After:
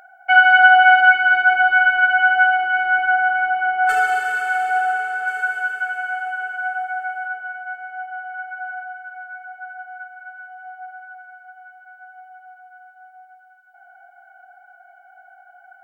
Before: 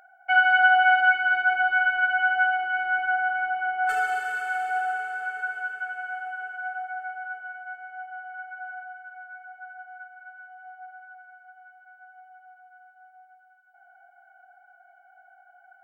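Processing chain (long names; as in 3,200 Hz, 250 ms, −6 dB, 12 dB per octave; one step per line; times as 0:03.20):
0:05.27–0:07.28: high-shelf EQ 4,000 Hz +8 dB
level +7.5 dB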